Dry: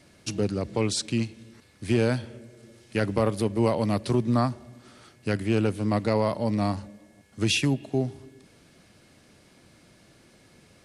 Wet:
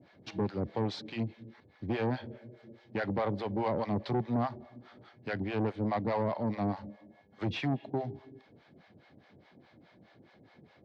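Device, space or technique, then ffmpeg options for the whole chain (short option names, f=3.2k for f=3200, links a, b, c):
guitar amplifier with harmonic tremolo: -filter_complex "[0:a]acrossover=split=580[a][b];[a]aeval=exprs='val(0)*(1-1/2+1/2*cos(2*PI*4.8*n/s))':c=same[c];[b]aeval=exprs='val(0)*(1-1/2-1/2*cos(2*PI*4.8*n/s))':c=same[d];[c][d]amix=inputs=2:normalize=0,asoftclip=type=tanh:threshold=-27.5dB,highpass=97,equalizer=f=800:t=q:w=4:g=5,equalizer=f=1.3k:t=q:w=4:g=-4,equalizer=f=2.7k:t=q:w=4:g=-9,lowpass=f=3.5k:w=0.5412,lowpass=f=3.5k:w=1.3066,volume=2.5dB"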